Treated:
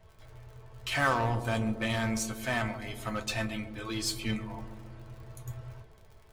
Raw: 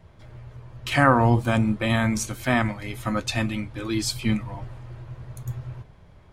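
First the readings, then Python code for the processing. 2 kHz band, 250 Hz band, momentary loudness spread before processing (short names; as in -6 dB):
-6.0 dB, -10.0 dB, 21 LU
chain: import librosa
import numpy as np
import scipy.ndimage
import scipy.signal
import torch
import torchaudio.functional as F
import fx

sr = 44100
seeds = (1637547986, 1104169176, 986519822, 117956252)

p1 = fx.peak_eq(x, sr, hz=220.0, db=-11.5, octaves=0.74)
p2 = fx.dmg_crackle(p1, sr, seeds[0], per_s=64.0, level_db=-42.0)
p3 = 10.0 ** (-22.5 / 20.0) * (np.abs((p2 / 10.0 ** (-22.5 / 20.0) + 3.0) % 4.0 - 2.0) - 1.0)
p4 = p2 + F.gain(torch.from_numpy(p3), -5.0).numpy()
p5 = fx.comb_fb(p4, sr, f0_hz=220.0, decay_s=0.15, harmonics='all', damping=0.0, mix_pct=80)
y = fx.echo_banded(p5, sr, ms=136, feedback_pct=73, hz=350.0, wet_db=-8.0)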